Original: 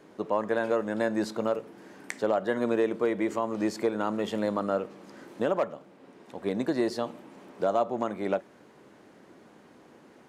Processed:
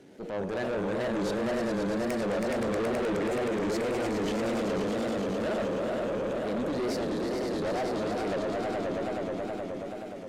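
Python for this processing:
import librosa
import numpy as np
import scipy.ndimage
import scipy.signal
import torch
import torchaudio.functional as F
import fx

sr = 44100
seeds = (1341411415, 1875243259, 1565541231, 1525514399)

p1 = x + fx.echo_swell(x, sr, ms=106, loudest=5, wet_db=-7.0, dry=0)
p2 = fx.wow_flutter(p1, sr, seeds[0], rate_hz=2.1, depth_cents=150.0)
p3 = fx.peak_eq(p2, sr, hz=1100.0, db=-14.0, octaves=0.69)
p4 = fx.tube_stage(p3, sr, drive_db=30.0, bias=0.45)
p5 = fx.transient(p4, sr, attack_db=-8, sustain_db=3)
y = p5 * librosa.db_to_amplitude(4.0)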